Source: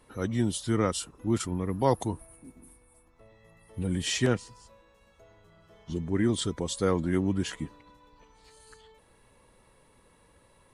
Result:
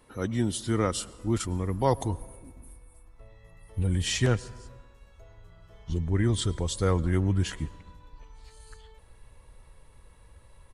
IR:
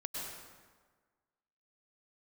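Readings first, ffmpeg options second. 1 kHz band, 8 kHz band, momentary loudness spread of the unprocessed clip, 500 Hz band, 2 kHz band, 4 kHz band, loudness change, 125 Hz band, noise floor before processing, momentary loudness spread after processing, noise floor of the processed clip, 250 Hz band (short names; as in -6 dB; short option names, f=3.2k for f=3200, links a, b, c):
+0.5 dB, +0.5 dB, 10 LU, -0.5 dB, +0.5 dB, +0.5 dB, +1.0 dB, +5.0 dB, -62 dBFS, 13 LU, -55 dBFS, -1.5 dB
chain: -filter_complex "[0:a]asubboost=boost=6.5:cutoff=87,asplit=2[a][b];[1:a]atrim=start_sample=2205[c];[b][c]afir=irnorm=-1:irlink=0,volume=-19.5dB[d];[a][d]amix=inputs=2:normalize=0,aresample=32000,aresample=44100"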